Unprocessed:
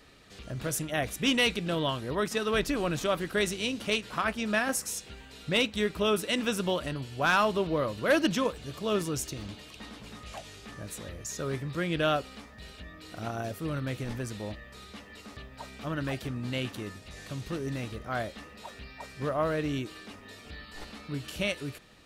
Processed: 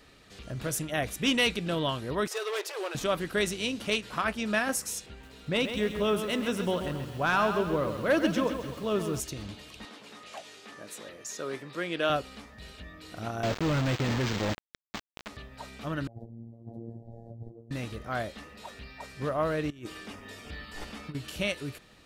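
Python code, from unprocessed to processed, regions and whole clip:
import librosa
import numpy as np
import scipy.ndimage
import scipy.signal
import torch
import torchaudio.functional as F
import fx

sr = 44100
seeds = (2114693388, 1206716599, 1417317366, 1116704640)

y = fx.chain(x, sr, fx.overload_stage(gain_db=28.5),
    fx.brickwall_highpass(low_hz=340.0), at=(2.27, 2.95))
y = fx.chain(y, sr, fx.high_shelf(hz=2200.0, db=-6.5),
    fx.echo_crushed(ms=133, feedback_pct=55, bits=8, wet_db=-8), at=(5.06, 9.2))
y = fx.chain(y, sr, fx.highpass(hz=300.0, slope=12),
    fx.high_shelf(hz=11000.0, db=-6.5), at=(9.85, 12.1))
y = fx.chain(y, sr, fx.highpass(hz=80.0, slope=12),
    fx.quant_companded(bits=2),
    fx.resample_linear(factor=4), at=(13.43, 15.28))
y = fx.chain(y, sr, fx.ellip_lowpass(hz=760.0, order=4, stop_db=40),
    fx.over_compress(threshold_db=-40.0, ratio=-0.5),
    fx.robotise(hz=115.0), at=(16.07, 17.71))
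y = fx.chain(y, sr, fx.over_compress(threshold_db=-38.0, ratio=-0.5),
    fx.notch(hz=4100.0, q=8.6), at=(19.7, 21.15))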